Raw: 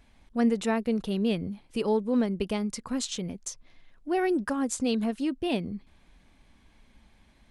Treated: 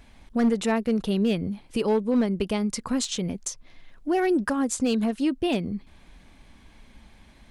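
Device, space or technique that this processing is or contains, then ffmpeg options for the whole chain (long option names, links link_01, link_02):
clipper into limiter: -af "asoftclip=type=hard:threshold=-19dB,alimiter=limit=-23.5dB:level=0:latency=1:release=423,volume=7.5dB"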